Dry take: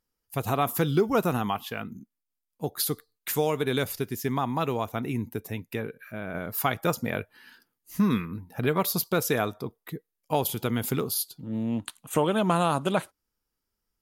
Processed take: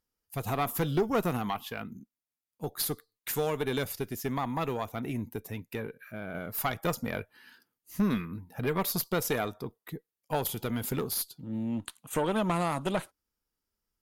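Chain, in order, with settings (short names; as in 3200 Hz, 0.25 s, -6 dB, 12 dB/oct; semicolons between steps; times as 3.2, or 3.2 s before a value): tube stage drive 17 dB, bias 0.5; gain -1 dB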